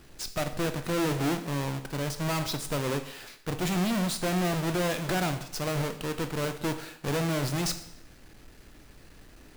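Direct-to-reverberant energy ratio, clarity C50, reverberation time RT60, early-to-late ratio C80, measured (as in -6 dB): 8.0 dB, 11.5 dB, 0.70 s, 14.0 dB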